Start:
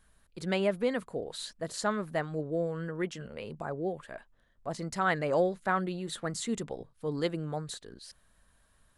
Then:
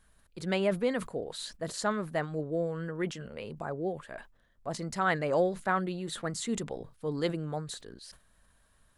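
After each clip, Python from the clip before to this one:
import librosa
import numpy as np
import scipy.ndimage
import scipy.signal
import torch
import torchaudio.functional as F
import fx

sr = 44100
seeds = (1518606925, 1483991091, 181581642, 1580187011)

y = fx.sustainer(x, sr, db_per_s=150.0)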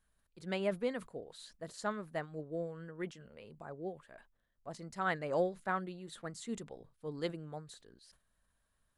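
y = fx.upward_expand(x, sr, threshold_db=-39.0, expansion=1.5)
y = y * 10.0 ** (-4.5 / 20.0)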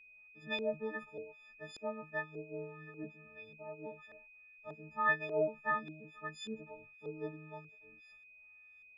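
y = fx.freq_snap(x, sr, grid_st=6)
y = fx.filter_lfo_lowpass(y, sr, shape='saw_up', hz=1.7, low_hz=400.0, high_hz=3700.0, q=1.9)
y = y + 10.0 ** (-51.0 / 20.0) * np.sin(2.0 * np.pi * 2500.0 * np.arange(len(y)) / sr)
y = y * 10.0 ** (-6.0 / 20.0)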